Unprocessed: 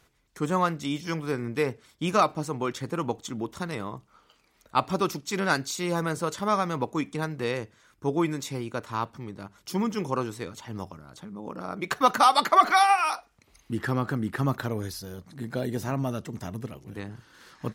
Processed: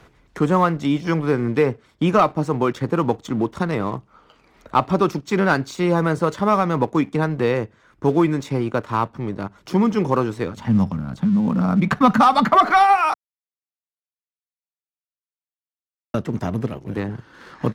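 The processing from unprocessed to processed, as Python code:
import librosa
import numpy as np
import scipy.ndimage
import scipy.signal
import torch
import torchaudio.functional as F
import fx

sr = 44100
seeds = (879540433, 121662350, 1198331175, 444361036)

y = fx.low_shelf_res(x, sr, hz=280.0, db=7.5, q=3.0, at=(10.56, 12.55))
y = fx.edit(y, sr, fx.silence(start_s=13.14, length_s=3.0), tone=tone)
y = fx.lowpass(y, sr, hz=1500.0, slope=6)
y = fx.leveller(y, sr, passes=1)
y = fx.band_squash(y, sr, depth_pct=40)
y = y * librosa.db_to_amplitude(6.0)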